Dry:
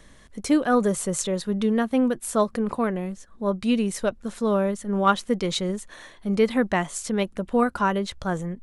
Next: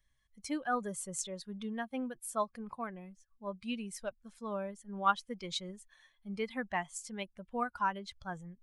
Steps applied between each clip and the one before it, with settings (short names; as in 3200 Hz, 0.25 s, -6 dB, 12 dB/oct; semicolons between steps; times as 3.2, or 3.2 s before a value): per-bin expansion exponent 1.5; resonant low shelf 620 Hz -6.5 dB, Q 1.5; gain -8 dB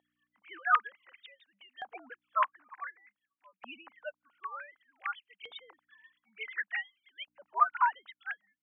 sine-wave speech; hum 60 Hz, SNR 19 dB; LFO high-pass saw up 0.55 Hz 760–3000 Hz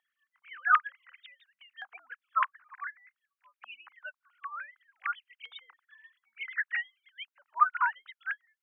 resonant high-pass 1400 Hz, resonance Q 1.9; gain -1.5 dB